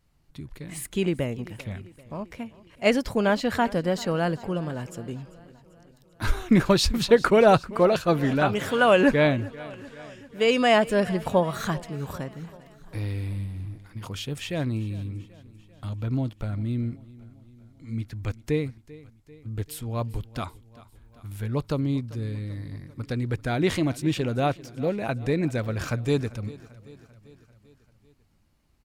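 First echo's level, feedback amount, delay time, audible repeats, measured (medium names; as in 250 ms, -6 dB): -20.0 dB, 59%, 392 ms, 4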